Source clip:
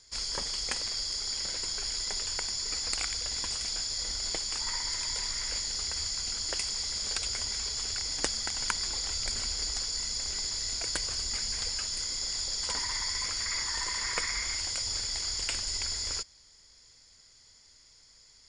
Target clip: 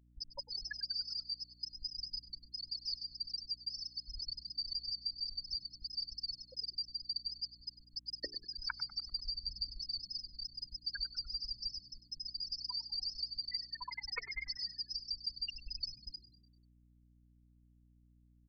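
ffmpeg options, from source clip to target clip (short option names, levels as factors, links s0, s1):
-filter_complex "[0:a]afftfilt=real='re*gte(hypot(re,im),0.112)':imag='im*gte(hypot(re,im),0.112)':win_size=1024:overlap=0.75,tiltshelf=f=1500:g=-7,bandreject=f=60:t=h:w=6,bandreject=f=120:t=h:w=6,bandreject=f=180:t=h:w=6,bandreject=f=240:t=h:w=6,bandreject=f=300:t=h:w=6,bandreject=f=360:t=h:w=6,bandreject=f=420:t=h:w=6,acompressor=threshold=0.00708:ratio=6,aeval=exprs='val(0)+0.000251*(sin(2*PI*60*n/s)+sin(2*PI*2*60*n/s)/2+sin(2*PI*3*60*n/s)/3+sin(2*PI*4*60*n/s)/4+sin(2*PI*5*60*n/s)/5)':c=same,asplit=2[s0][s1];[s1]asplit=5[s2][s3][s4][s5][s6];[s2]adelay=98,afreqshift=-75,volume=0.15[s7];[s3]adelay=196,afreqshift=-150,volume=0.0776[s8];[s4]adelay=294,afreqshift=-225,volume=0.0403[s9];[s5]adelay=392,afreqshift=-300,volume=0.0211[s10];[s6]adelay=490,afreqshift=-375,volume=0.011[s11];[s7][s8][s9][s10][s11]amix=inputs=5:normalize=0[s12];[s0][s12]amix=inputs=2:normalize=0,aresample=11025,aresample=44100,volume=2.24"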